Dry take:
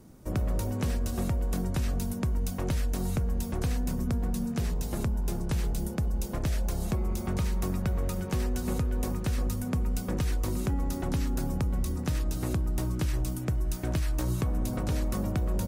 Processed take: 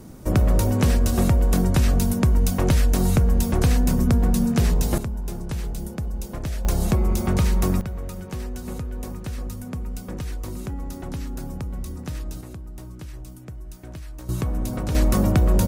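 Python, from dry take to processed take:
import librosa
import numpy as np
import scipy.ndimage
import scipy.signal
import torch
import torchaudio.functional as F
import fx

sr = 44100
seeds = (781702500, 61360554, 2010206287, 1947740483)

y = fx.gain(x, sr, db=fx.steps((0.0, 10.5), (4.98, 0.5), (6.65, 9.0), (7.81, -2.0), (12.41, -8.5), (14.29, 3.5), (14.95, 11.0)))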